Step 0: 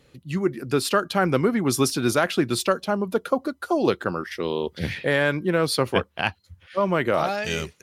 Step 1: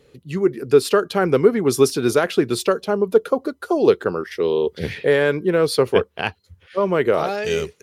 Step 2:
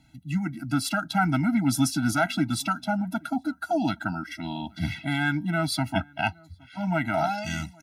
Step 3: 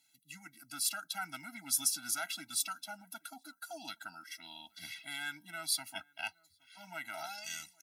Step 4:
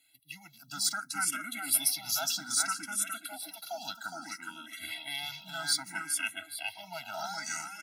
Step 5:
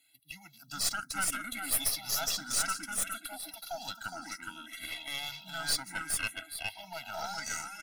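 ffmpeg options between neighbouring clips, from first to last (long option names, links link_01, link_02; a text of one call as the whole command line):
ffmpeg -i in.wav -af "equalizer=frequency=430:width=3.7:gain=12" out.wav
ffmpeg -i in.wav -filter_complex "[0:a]asplit=2[link_01][link_02];[link_02]adelay=816.3,volume=-27dB,highshelf=frequency=4000:gain=-18.4[link_03];[link_01][link_03]amix=inputs=2:normalize=0,afftfilt=real='re*eq(mod(floor(b*sr/1024/320),2),0)':imag='im*eq(mod(floor(b*sr/1024/320),2),0)':win_size=1024:overlap=0.75" out.wav
ffmpeg -i in.wav -af "aderivative" out.wav
ffmpeg -i in.wav -filter_complex "[0:a]asplit=2[link_01][link_02];[link_02]aecho=0:1:415|830|1245|1660:0.668|0.221|0.0728|0.024[link_03];[link_01][link_03]amix=inputs=2:normalize=0,asplit=2[link_04][link_05];[link_05]afreqshift=0.62[link_06];[link_04][link_06]amix=inputs=2:normalize=1,volume=7dB" out.wav
ffmpeg -i in.wav -af "aeval=exprs='(tanh(20*val(0)+0.65)-tanh(0.65))/20':channel_layout=same,volume=3dB" out.wav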